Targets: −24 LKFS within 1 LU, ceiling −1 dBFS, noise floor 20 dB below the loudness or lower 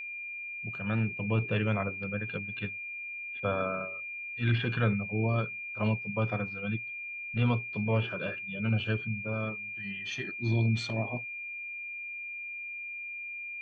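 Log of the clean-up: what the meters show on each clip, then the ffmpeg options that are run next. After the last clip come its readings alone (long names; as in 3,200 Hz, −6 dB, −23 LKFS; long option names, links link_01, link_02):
interfering tone 2,400 Hz; level of the tone −37 dBFS; integrated loudness −32.5 LKFS; sample peak −13.5 dBFS; target loudness −24.0 LKFS
→ -af "bandreject=frequency=2400:width=30"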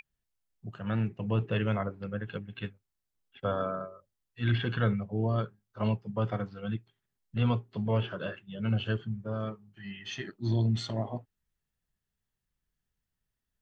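interfering tone none found; integrated loudness −32.5 LKFS; sample peak −14.0 dBFS; target loudness −24.0 LKFS
→ -af "volume=8.5dB"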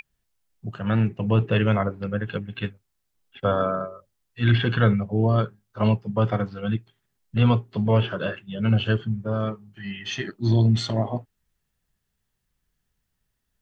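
integrated loudness −24.0 LKFS; sample peak −5.5 dBFS; background noise floor −77 dBFS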